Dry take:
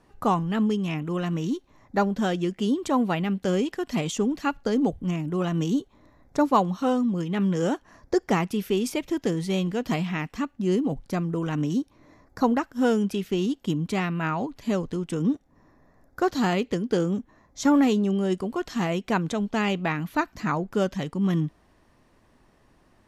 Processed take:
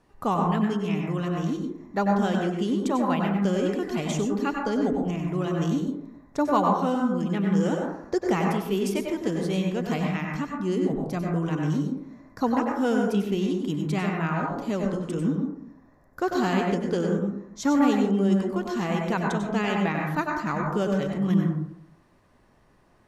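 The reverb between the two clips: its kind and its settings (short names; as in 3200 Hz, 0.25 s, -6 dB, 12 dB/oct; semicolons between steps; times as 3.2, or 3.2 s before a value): plate-style reverb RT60 0.72 s, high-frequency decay 0.25×, pre-delay 85 ms, DRR 0 dB; gain -3 dB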